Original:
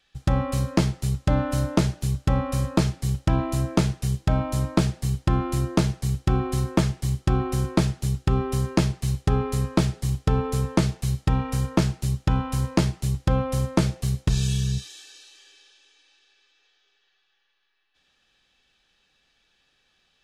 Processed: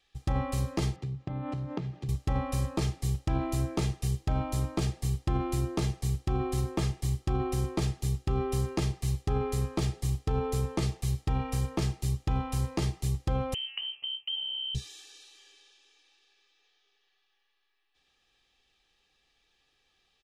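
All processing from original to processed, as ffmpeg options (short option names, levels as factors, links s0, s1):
-filter_complex "[0:a]asettb=1/sr,asplit=3[s0][s1][s2];[s0]atrim=end=0.964[s3];[s1]atrim=start=0.96:end=2.09,asetpts=PTS-STARTPTS,afade=t=in:d=0.004:c=qsin,afade=t=out:st=1.126:d=0.004:c=qsin,equalizer=f=150:w=1.5:g=10.5,acompressor=threshold=0.0631:ratio=6:attack=3.2:release=140:knee=1:detection=peak,highpass=110,lowpass=3000[s4];[s2]atrim=start=2.086[s5];[s3][s4]acrossfade=d=0.004:c1=hsin:c2=qsin[s6];[s6][s5]acrossfade=d=0.004:c1=qsin:c2=hsin,asettb=1/sr,asplit=3[s7][s8][s9];[s7]atrim=end=13.544[s10];[s8]atrim=start=13.54:end=14.75,asetpts=PTS-STARTPTS,afade=t=in:d=0.004:c=qsin,afade=t=out:st=1.206:d=0.004:c=qsin,equalizer=f=1600:w=0.36:g=-9.5,acompressor=threshold=0.0501:ratio=6:attack=3.2:release=140:knee=1:detection=peak,lowpass=f=2700:t=q:w=0.5098,lowpass=f=2700:t=q:w=0.6013,lowpass=f=2700:t=q:w=0.9,lowpass=f=2700:t=q:w=2.563,afreqshift=-3200[s11];[s9]atrim=start=14.746[s12];[s10][s11]acrossfade=d=0.004:c1=hsin:c2=qsin[s13];[s13][s12]acrossfade=d=0.004:c1=qsin:c2=hsin,aecho=1:1:2.5:0.39,alimiter=limit=0.178:level=0:latency=1:release=30,bandreject=f=1500:w=6.1,volume=0.596"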